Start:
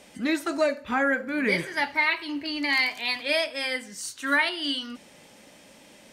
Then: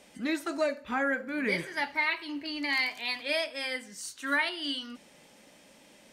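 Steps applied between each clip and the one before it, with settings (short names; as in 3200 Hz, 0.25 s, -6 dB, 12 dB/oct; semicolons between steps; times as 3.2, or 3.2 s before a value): bell 97 Hz -13.5 dB 0.25 oct; gain -5 dB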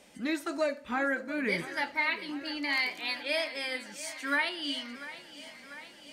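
thinning echo 0.694 s, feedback 69%, high-pass 190 Hz, level -15 dB; gain -1 dB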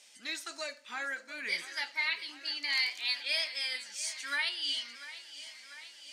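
band-pass 5600 Hz, Q 1; gain +6 dB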